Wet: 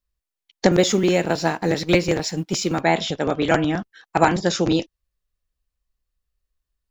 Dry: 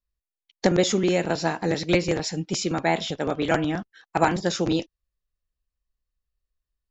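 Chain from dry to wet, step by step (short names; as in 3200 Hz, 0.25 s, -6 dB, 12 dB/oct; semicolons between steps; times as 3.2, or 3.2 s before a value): 0.72–2.81 G.711 law mismatch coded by A; gain +4 dB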